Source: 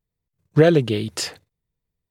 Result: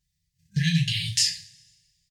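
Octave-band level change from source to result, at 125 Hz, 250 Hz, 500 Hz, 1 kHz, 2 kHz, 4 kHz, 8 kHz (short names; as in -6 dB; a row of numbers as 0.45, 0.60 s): -3.0 dB, -8.0 dB, under -40 dB, under -40 dB, -2.5 dB, +6.0 dB, +5.5 dB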